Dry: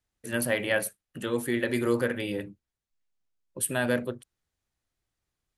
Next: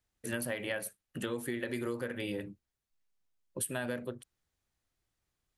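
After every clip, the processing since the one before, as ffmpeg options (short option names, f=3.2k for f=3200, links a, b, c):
-af "acompressor=threshold=-32dB:ratio=10"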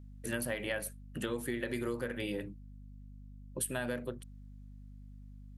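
-af "aeval=exprs='val(0)+0.00355*(sin(2*PI*50*n/s)+sin(2*PI*2*50*n/s)/2+sin(2*PI*3*50*n/s)/3+sin(2*PI*4*50*n/s)/4+sin(2*PI*5*50*n/s)/5)':c=same"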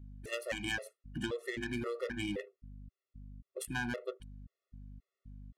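-af "adynamicsmooth=sensitivity=3.5:basefreq=1.8k,crystalizer=i=5.5:c=0,afftfilt=real='re*gt(sin(2*PI*1.9*pts/sr)*(1-2*mod(floor(b*sr/1024/360),2)),0)':imag='im*gt(sin(2*PI*1.9*pts/sr)*(1-2*mod(floor(b*sr/1024/360),2)),0)':win_size=1024:overlap=0.75,volume=1dB"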